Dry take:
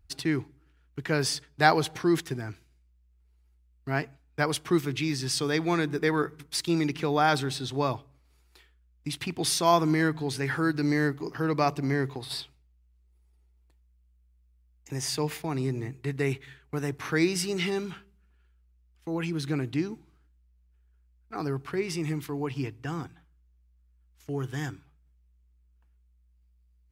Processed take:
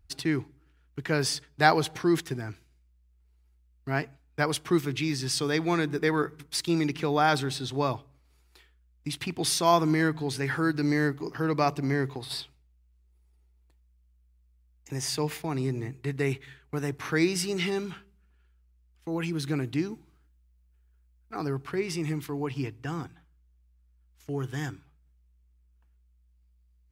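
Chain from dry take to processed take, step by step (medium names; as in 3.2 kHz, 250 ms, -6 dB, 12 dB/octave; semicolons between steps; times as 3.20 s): 19.12–21.38 s: treble shelf 9.3 kHz +5.5 dB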